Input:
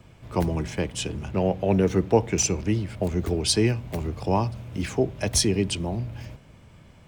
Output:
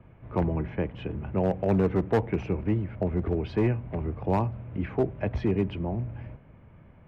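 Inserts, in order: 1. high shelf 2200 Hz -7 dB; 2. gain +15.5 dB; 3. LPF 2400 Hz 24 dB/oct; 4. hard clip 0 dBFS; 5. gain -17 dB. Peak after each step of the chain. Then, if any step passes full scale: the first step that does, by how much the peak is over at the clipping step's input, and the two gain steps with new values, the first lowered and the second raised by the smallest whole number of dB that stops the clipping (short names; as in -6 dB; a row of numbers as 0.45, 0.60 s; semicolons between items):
-8.0, +7.5, +7.5, 0.0, -17.0 dBFS; step 2, 7.5 dB; step 2 +7.5 dB, step 5 -9 dB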